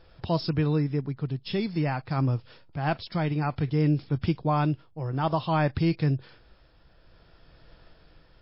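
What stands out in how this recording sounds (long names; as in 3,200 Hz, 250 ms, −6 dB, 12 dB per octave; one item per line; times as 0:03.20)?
tremolo triangle 0.55 Hz, depth 50%
MP3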